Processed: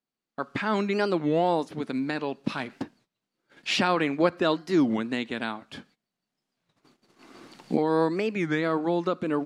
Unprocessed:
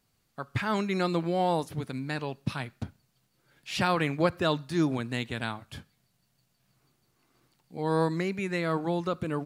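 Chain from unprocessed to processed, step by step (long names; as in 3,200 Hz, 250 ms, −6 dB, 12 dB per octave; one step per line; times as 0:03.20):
0:02.44–0:02.85: mu-law and A-law mismatch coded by mu
camcorder AGC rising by 9.4 dB per second
high-frequency loss of the air 69 metres
noise gate −55 dBFS, range −18 dB
low shelf with overshoot 160 Hz −13.5 dB, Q 1.5
wow of a warped record 33 1/3 rpm, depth 250 cents
level +2 dB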